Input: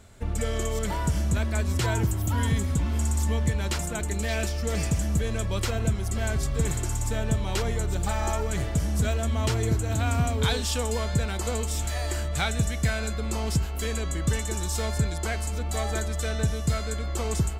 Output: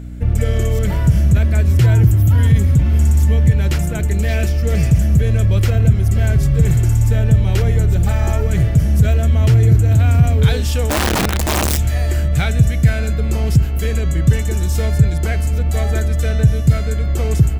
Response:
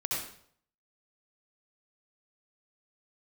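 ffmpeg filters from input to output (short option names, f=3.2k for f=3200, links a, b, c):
-filter_complex "[0:a]equalizer=f=125:t=o:w=1:g=11,equalizer=f=250:t=o:w=1:g=-6,equalizer=f=1k:t=o:w=1:g=-11,equalizer=f=4k:t=o:w=1:g=-7,equalizer=f=8k:t=o:w=1:g=-9,asplit=2[a][b];[b]alimiter=limit=-18dB:level=0:latency=1:release=10,volume=2.5dB[c];[a][c]amix=inputs=2:normalize=0,asplit=3[d][e][f];[d]afade=t=out:st=10.89:d=0.02[g];[e]aeval=exprs='(mod(5.62*val(0)+1,2)-1)/5.62':c=same,afade=t=in:st=10.89:d=0.02,afade=t=out:st=11.76:d=0.02[h];[f]afade=t=in:st=11.76:d=0.02[i];[g][h][i]amix=inputs=3:normalize=0,aeval=exprs='val(0)+0.0282*(sin(2*PI*60*n/s)+sin(2*PI*2*60*n/s)/2+sin(2*PI*3*60*n/s)/3+sin(2*PI*4*60*n/s)/4+sin(2*PI*5*60*n/s)/5)':c=same,volume=3dB"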